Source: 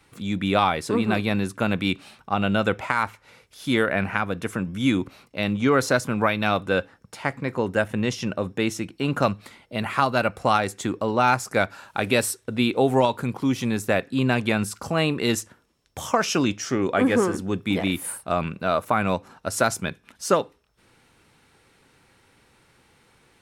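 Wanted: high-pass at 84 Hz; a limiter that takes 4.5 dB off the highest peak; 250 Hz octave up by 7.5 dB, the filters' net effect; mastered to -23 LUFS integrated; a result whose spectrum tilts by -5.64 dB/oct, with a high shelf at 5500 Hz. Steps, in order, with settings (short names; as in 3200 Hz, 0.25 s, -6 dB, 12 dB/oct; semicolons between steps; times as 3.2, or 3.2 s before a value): HPF 84 Hz; bell 250 Hz +9 dB; high shelf 5500 Hz -5.5 dB; gain -2 dB; limiter -9.5 dBFS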